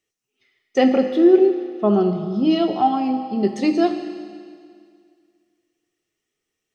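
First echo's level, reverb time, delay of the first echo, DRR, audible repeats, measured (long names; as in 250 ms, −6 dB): no echo audible, 2.1 s, no echo audible, 6.0 dB, no echo audible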